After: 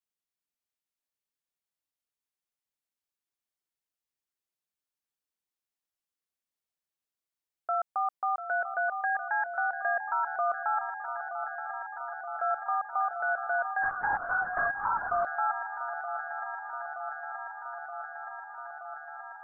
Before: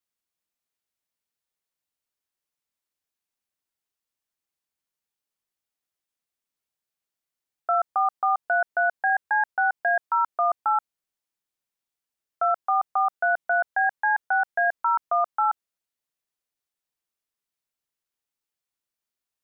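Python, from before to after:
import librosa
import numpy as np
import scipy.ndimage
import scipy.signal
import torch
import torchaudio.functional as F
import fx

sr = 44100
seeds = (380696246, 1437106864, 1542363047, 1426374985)

p1 = x + fx.echo_swing(x, sr, ms=924, ratio=3, feedback_pct=77, wet_db=-10.5, dry=0)
p2 = fx.lpc_vocoder(p1, sr, seeds[0], excitation='whisper', order=10, at=(13.83, 15.25))
y = F.gain(torch.from_numpy(p2), -7.0).numpy()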